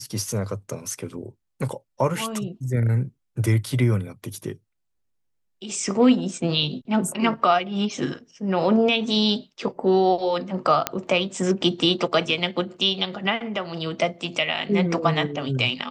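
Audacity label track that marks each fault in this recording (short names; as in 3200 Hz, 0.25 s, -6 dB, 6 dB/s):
10.870000	10.870000	pop -4 dBFS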